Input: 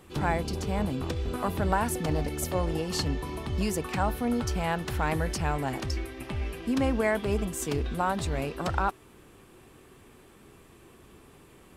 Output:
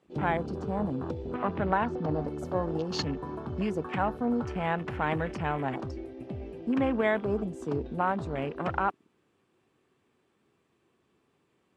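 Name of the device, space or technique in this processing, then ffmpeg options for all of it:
over-cleaned archive recording: -filter_complex "[0:a]asettb=1/sr,asplit=3[s0][s1][s2];[s0]atrim=end=1.344[s3];[s1]atrim=start=1.34:end=2.21,asetpts=PTS-STARTPTS,afade=t=in:d=0.004:c=qsin,afade=t=out:st=0.866:d=0.004:c=qsin,lowpass=f=5700:w=0.5412,lowpass=f=5700:w=1.3066[s4];[s2]atrim=start=2.206[s5];[s3][s4]acrossfade=d=0.004:c1=hsin:c2=qsin[s6];[s6][s5]acrossfade=d=0.004:c1=qsin:c2=hsin,highpass=120,lowpass=6400,afwtdn=0.0112"

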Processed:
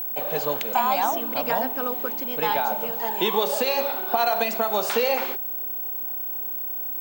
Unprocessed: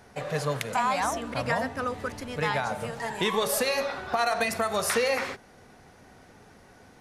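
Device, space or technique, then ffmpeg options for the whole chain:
old television with a line whistle: -af "highpass=f=200:w=0.5412,highpass=f=200:w=1.3066,equalizer=f=360:t=q:w=4:g=4,equalizer=f=830:t=q:w=4:g=7,equalizer=f=1200:t=q:w=4:g=-4,equalizer=f=1900:t=q:w=4:g=-8,equalizer=f=3100:t=q:w=4:g=4,equalizer=f=5600:t=q:w=4:g=-5,lowpass=f=7600:w=0.5412,lowpass=f=7600:w=1.3066,aeval=exprs='val(0)+0.0355*sin(2*PI*15734*n/s)':c=same,volume=1.26"

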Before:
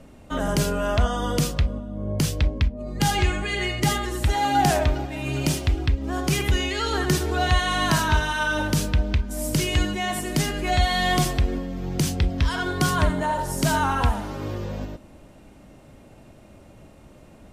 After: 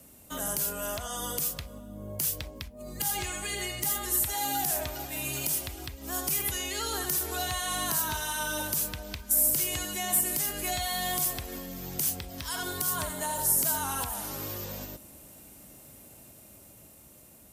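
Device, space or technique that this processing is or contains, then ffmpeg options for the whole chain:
FM broadcast chain: -filter_complex "[0:a]highpass=51,dynaudnorm=f=620:g=7:m=1.68,acrossover=split=550|1200|2700[s0][s1][s2][s3];[s0]acompressor=threshold=0.0355:ratio=4[s4];[s1]acompressor=threshold=0.0501:ratio=4[s5];[s2]acompressor=threshold=0.0141:ratio=4[s6];[s3]acompressor=threshold=0.0158:ratio=4[s7];[s4][s5][s6][s7]amix=inputs=4:normalize=0,aemphasis=mode=production:type=50fm,alimiter=limit=0.224:level=0:latency=1:release=151,asoftclip=type=hard:threshold=0.158,lowpass=f=15000:w=0.5412,lowpass=f=15000:w=1.3066,aemphasis=mode=production:type=50fm,volume=0.355"

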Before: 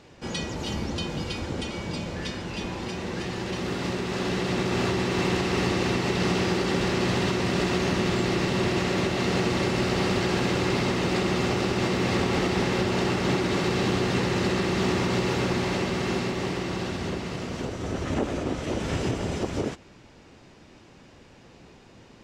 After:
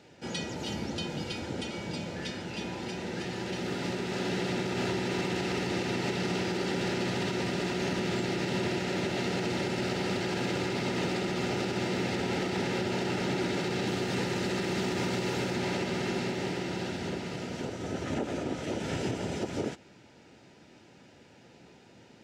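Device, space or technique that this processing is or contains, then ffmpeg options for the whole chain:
PA system with an anti-feedback notch: -filter_complex "[0:a]asettb=1/sr,asplit=3[s0][s1][s2];[s0]atrim=end=13.874[s3];[s1]atrim=start=13.87:end=15.56,asetpts=PTS-STARTPTS,afade=t=in:d=0.004:c=qsin,afade=t=out:st=1.686:d=0.004:c=qsin,highshelf=f=8000:g=5.5[s4];[s2]atrim=start=15.556[s5];[s3][s4]acrossfade=d=0.004:c1=hsin:c2=qsin[s6];[s6][s5]acrossfade=d=0.004:c1=qsin:c2=hsin,highpass=110,asuperstop=centerf=1100:order=12:qfactor=6.3,alimiter=limit=0.126:level=0:latency=1:release=68,volume=0.668"

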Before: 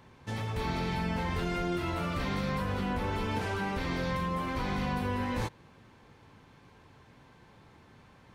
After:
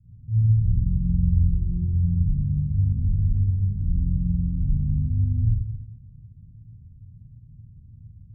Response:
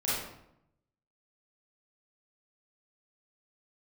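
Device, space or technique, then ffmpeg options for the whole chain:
club heard from the street: -filter_complex "[0:a]alimiter=level_in=1.12:limit=0.0631:level=0:latency=1,volume=0.891,lowpass=f=130:w=0.5412,lowpass=f=130:w=1.3066[s0];[1:a]atrim=start_sample=2205[s1];[s0][s1]afir=irnorm=-1:irlink=0,volume=2.51"

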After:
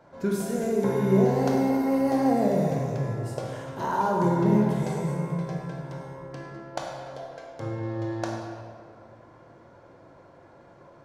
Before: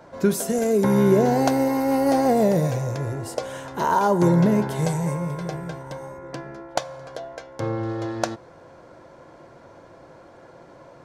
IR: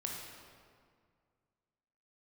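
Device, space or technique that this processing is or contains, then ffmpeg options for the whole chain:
swimming-pool hall: -filter_complex "[1:a]atrim=start_sample=2205[s0];[0:a][s0]afir=irnorm=-1:irlink=0,highshelf=f=4900:g=-5,volume=0.531"

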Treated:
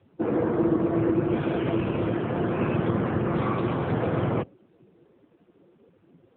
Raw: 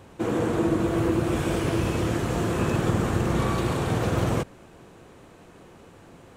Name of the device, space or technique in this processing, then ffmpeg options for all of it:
mobile call with aggressive noise cancelling: -af "highpass=f=120:p=1,afftdn=nr=16:nf=-38,volume=1.19" -ar 8000 -c:a libopencore_amrnb -b:a 7950

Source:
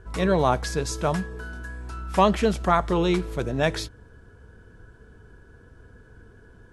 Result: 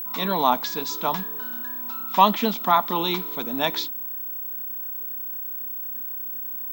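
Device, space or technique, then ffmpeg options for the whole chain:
old television with a line whistle: -af "highpass=f=220:w=0.5412,highpass=f=220:w=1.3066,equalizer=f=240:t=q:w=4:g=5,equalizer=f=380:t=q:w=4:g=-9,equalizer=f=540:t=q:w=4:g=-9,equalizer=f=960:t=q:w=4:g=8,equalizer=f=1600:t=q:w=4:g=-6,equalizer=f=3600:t=q:w=4:g=9,lowpass=f=6500:w=0.5412,lowpass=f=6500:w=1.3066,aeval=exprs='val(0)+0.0316*sin(2*PI*15734*n/s)':c=same,volume=1.12"

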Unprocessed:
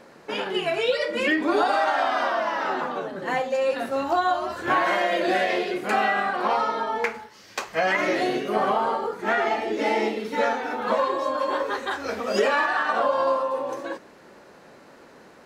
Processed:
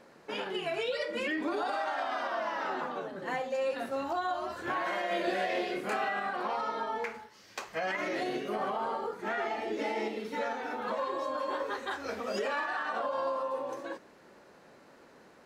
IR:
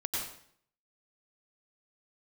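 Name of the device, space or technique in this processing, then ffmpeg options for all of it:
clipper into limiter: -filter_complex "[0:a]asoftclip=type=hard:threshold=0.282,alimiter=limit=0.15:level=0:latency=1:release=78,asettb=1/sr,asplit=3[s0][s1][s2];[s0]atrim=end=5.084[s3];[s1]atrim=start=5.08:end=6.09,asetpts=PTS-STARTPTS,afade=t=in:d=0.004:c=qsin,afade=t=out:st=1.006:d=0.004:c=qsin,asplit=2[s4][s5];[s5]adelay=26,volume=0.708[s6];[s4][s6]amix=inputs=2:normalize=0,atrim=end_sample=44541[s7];[s2]atrim=start=6.086[s8];[s3][s7]acrossfade=d=0.004:c1=hsin:c2=qsin[s9];[s9][s8]acrossfade=d=0.004:c1=qsin:c2=hsin,volume=0.422"

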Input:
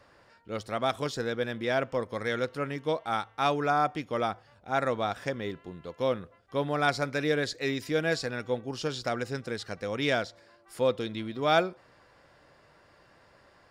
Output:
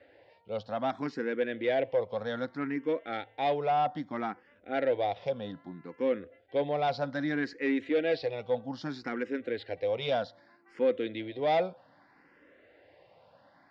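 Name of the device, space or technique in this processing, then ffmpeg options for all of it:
barber-pole phaser into a guitar amplifier: -filter_complex "[0:a]asplit=2[s0][s1];[s1]afreqshift=0.63[s2];[s0][s2]amix=inputs=2:normalize=1,asoftclip=type=tanh:threshold=0.0596,highpass=100,equalizer=f=130:t=q:w=4:g=-4,equalizer=f=280:t=q:w=4:g=7,equalizer=f=520:t=q:w=4:g=6,equalizer=f=760:t=q:w=4:g=4,equalizer=f=1200:t=q:w=4:g=-6,equalizer=f=2000:t=q:w=4:g=4,lowpass=f=4100:w=0.5412,lowpass=f=4100:w=1.3066"

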